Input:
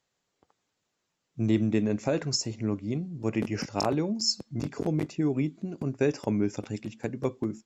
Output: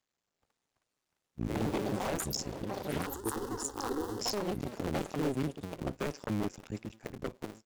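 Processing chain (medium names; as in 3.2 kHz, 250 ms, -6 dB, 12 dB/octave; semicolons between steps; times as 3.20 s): cycle switcher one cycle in 2, muted; ever faster or slower copies 442 ms, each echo +5 st, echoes 3; 3.06–4.21 s: static phaser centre 630 Hz, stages 6; wavefolder -20 dBFS; trim -4.5 dB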